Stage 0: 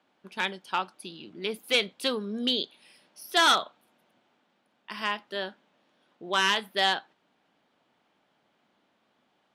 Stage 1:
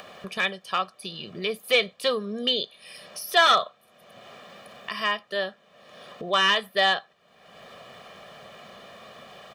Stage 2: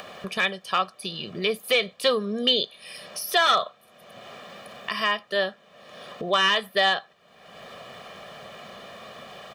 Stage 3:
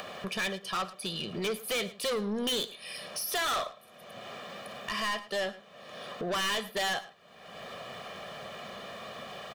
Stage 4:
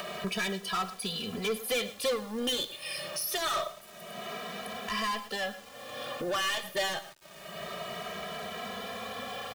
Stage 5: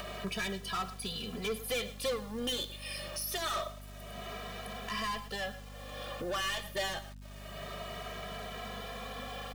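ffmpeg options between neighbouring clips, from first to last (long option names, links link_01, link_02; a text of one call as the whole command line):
ffmpeg -i in.wav -filter_complex "[0:a]acrossover=split=4400[link_01][link_02];[link_02]acompressor=threshold=-42dB:ratio=4:attack=1:release=60[link_03];[link_01][link_03]amix=inputs=2:normalize=0,aecho=1:1:1.7:0.82,acompressor=mode=upward:threshold=-30dB:ratio=2.5,volume=2dB" out.wav
ffmpeg -i in.wav -af "alimiter=limit=-14dB:level=0:latency=1:release=151,volume=3.5dB" out.wav
ffmpeg -i in.wav -af "asoftclip=type=tanh:threshold=-28dB,aecho=1:1:108:0.133" out.wav
ffmpeg -i in.wav -filter_complex "[0:a]alimiter=level_in=7.5dB:limit=-24dB:level=0:latency=1:release=107,volume=-7.5dB,acrusher=bits=8:mix=0:aa=0.000001,asplit=2[link_01][link_02];[link_02]adelay=2.7,afreqshift=0.26[link_03];[link_01][link_03]amix=inputs=2:normalize=1,volume=7dB" out.wav
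ffmpeg -i in.wav -af "aeval=exprs='val(0)+0.00708*(sin(2*PI*50*n/s)+sin(2*PI*2*50*n/s)/2+sin(2*PI*3*50*n/s)/3+sin(2*PI*4*50*n/s)/4+sin(2*PI*5*50*n/s)/5)':channel_layout=same,volume=-4dB" out.wav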